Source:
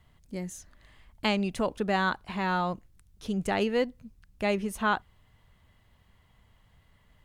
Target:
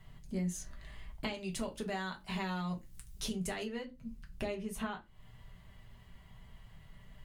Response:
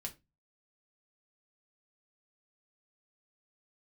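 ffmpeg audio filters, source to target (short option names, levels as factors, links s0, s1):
-filter_complex "[0:a]asettb=1/sr,asplit=3[s0][s1][s2];[s0]atrim=end=1.344[s3];[s1]atrim=start=1.34:end=3.64,asetpts=PTS-STARTPTS,afade=t=in:d=0.004:c=qsin,afade=t=out:st=2.296:d=0.004:c=qsin,highshelf=f=3300:g=11[s4];[s2]atrim=start=3.636[s5];[s3][s4]acrossfade=d=0.004:c1=hsin:c2=qsin[s6];[s6][s5]acrossfade=d=0.004:c1=qsin:c2=hsin,acompressor=threshold=0.0112:ratio=16[s7];[1:a]atrim=start_sample=2205[s8];[s7][s8]afir=irnorm=-1:irlink=0,volume=2"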